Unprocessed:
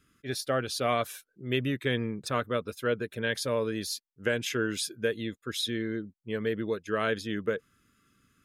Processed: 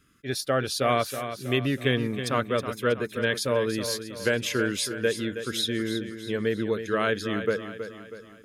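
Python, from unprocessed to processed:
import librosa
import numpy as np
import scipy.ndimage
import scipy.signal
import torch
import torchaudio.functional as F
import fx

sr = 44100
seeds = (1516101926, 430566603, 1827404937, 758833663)

y = fx.echo_feedback(x, sr, ms=321, feedback_pct=48, wet_db=-10.0)
y = F.gain(torch.from_numpy(y), 3.5).numpy()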